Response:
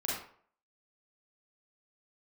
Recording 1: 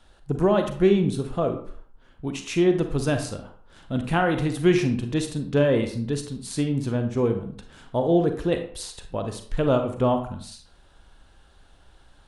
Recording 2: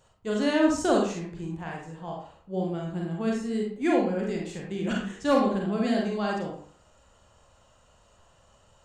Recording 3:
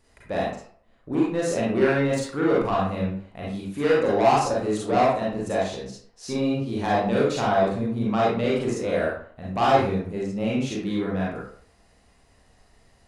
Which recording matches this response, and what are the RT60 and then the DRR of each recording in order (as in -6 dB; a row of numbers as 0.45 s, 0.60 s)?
3; 0.55 s, 0.55 s, 0.55 s; 6.0 dB, -1.5 dB, -6.0 dB